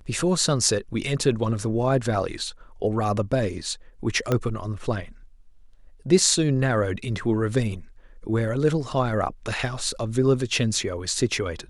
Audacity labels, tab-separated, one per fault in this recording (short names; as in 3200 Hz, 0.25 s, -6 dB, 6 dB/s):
4.320000	4.320000	pop -10 dBFS